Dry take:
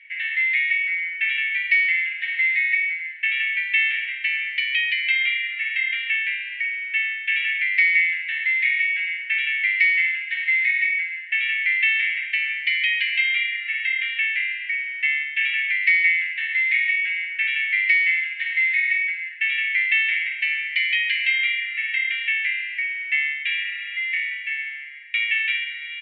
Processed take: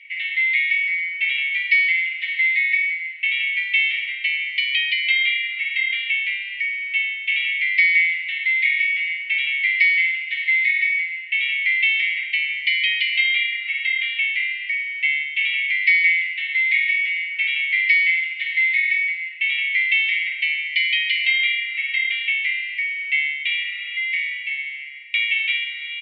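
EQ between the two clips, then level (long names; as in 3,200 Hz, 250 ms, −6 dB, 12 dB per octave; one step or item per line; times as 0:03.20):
Butterworth band-reject 1,700 Hz, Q 4.9
dynamic equaliser 2,600 Hz, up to −6 dB, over −39 dBFS, Q 6.1
parametric band 1,400 Hz −12 dB 1.1 octaves
+8.5 dB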